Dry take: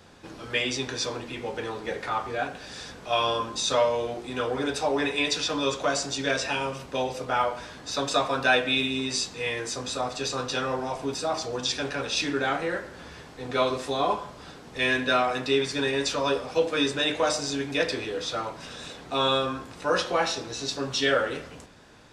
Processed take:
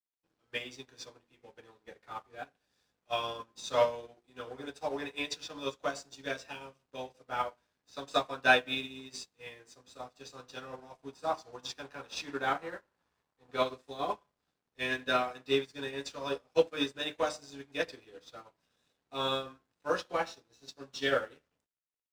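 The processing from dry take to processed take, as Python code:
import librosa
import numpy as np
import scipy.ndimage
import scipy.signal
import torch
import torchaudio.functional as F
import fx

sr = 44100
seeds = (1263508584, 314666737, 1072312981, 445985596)

y = np.sign(x) * np.maximum(np.abs(x) - 10.0 ** (-46.5 / 20.0), 0.0)
y = fx.peak_eq(y, sr, hz=1000.0, db=6.5, octaves=1.0, at=(11.12, 13.56))
y = fx.upward_expand(y, sr, threshold_db=-40.0, expansion=2.5)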